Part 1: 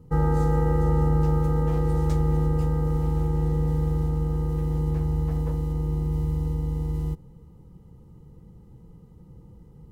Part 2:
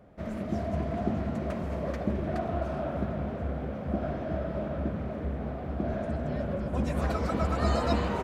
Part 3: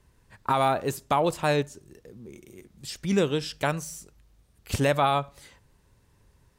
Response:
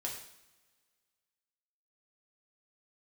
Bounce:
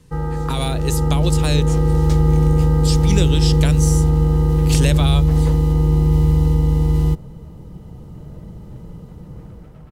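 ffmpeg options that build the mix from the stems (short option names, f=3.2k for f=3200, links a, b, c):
-filter_complex "[0:a]dynaudnorm=f=450:g=5:m=14.5dB,volume=-1.5dB[a];[1:a]lowpass=1.3k,aecho=1:1:6.6:0.65,asoftclip=type=tanh:threshold=-31dB,adelay=2350,volume=-18dB[b];[2:a]lowpass=11k,highshelf=f=5.3k:g=12,volume=2.5dB[c];[a][b][c]amix=inputs=3:normalize=0,equalizer=f=3.5k:w=0.7:g=5,acrossover=split=430|3000[d][e][f];[e]acompressor=threshold=-28dB:ratio=6[g];[d][g][f]amix=inputs=3:normalize=0"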